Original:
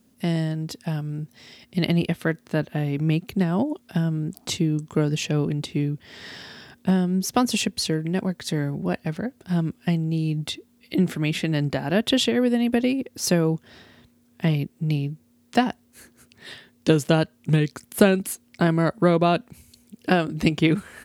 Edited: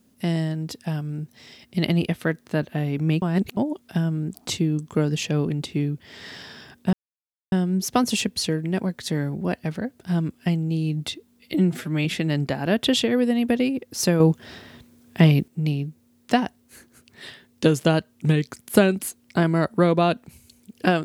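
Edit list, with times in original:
3.22–3.57 reverse
6.93 insert silence 0.59 s
10.95–11.29 stretch 1.5×
13.44–14.72 gain +6.5 dB

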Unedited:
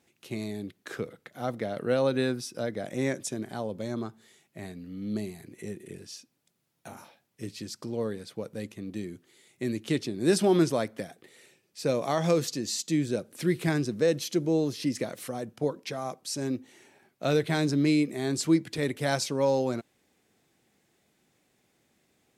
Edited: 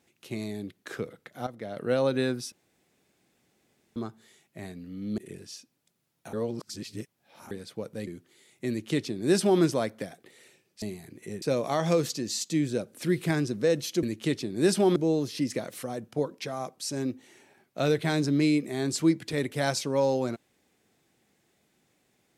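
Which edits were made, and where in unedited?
1.47–1.92 fade in, from -13 dB
2.52–3.96 room tone
5.18–5.78 move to 11.8
6.93–8.11 reverse
8.67–9.05 cut
9.67–10.6 copy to 14.41

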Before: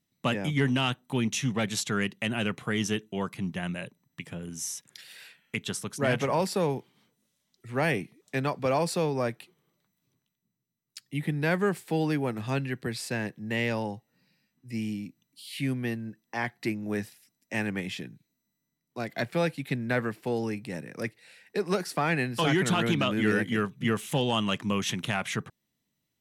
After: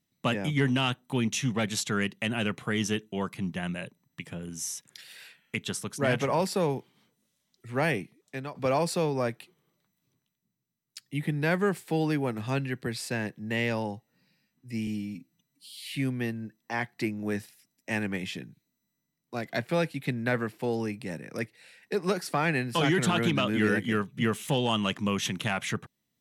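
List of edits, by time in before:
7.83–8.55 fade out, to -11.5 dB
14.87–15.6 stretch 1.5×

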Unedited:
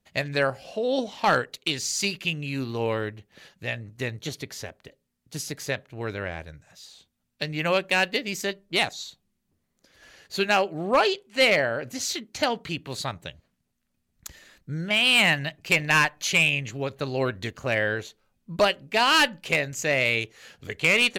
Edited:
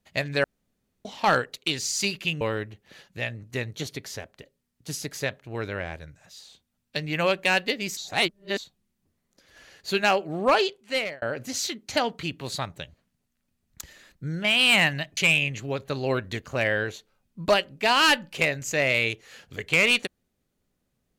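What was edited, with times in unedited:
0.44–1.05 room tone
2.41–2.87 cut
8.43–9.04 reverse
11.13–11.68 fade out
15.63–16.28 cut

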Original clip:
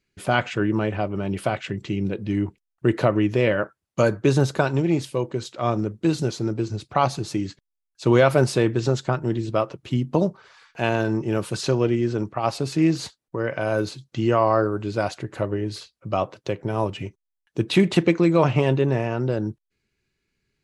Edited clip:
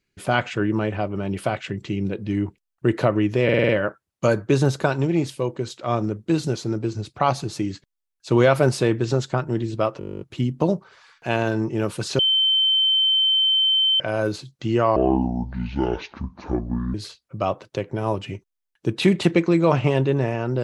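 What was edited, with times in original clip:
3.44 stutter 0.05 s, 6 plays
9.74 stutter 0.02 s, 12 plays
11.72–13.53 bleep 3090 Hz -15.5 dBFS
14.49–15.66 speed 59%

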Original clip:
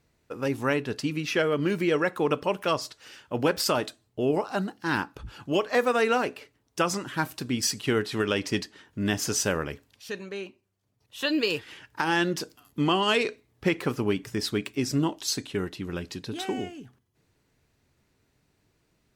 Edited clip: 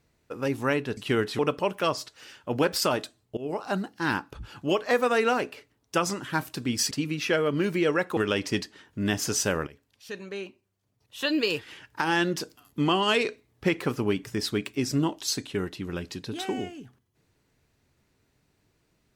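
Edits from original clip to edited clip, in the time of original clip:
0.97–2.23 swap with 7.75–8.17
4.21–4.52 fade in, from -19.5 dB
9.67–10.33 fade in linear, from -16.5 dB

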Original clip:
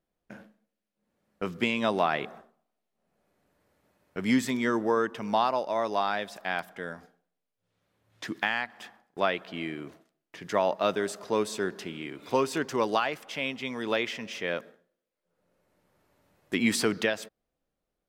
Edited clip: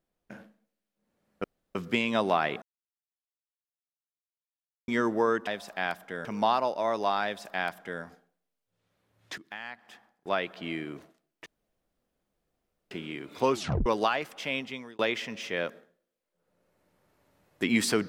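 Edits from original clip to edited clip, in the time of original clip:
1.44 insert room tone 0.31 s
2.31–4.57 mute
6.15–6.93 copy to 5.16
8.29–9.62 fade in, from -19.5 dB
10.37–11.82 room tone
12.43 tape stop 0.34 s
13.51–13.9 fade out

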